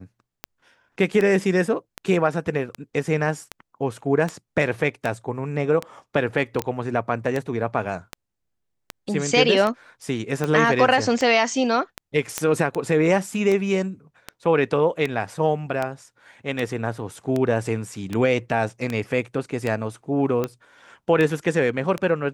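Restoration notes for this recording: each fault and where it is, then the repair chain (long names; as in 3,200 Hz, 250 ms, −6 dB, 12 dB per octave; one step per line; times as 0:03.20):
scratch tick 78 rpm −12 dBFS
0:06.62: click −11 dBFS
0:12.38: click −7 dBFS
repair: click removal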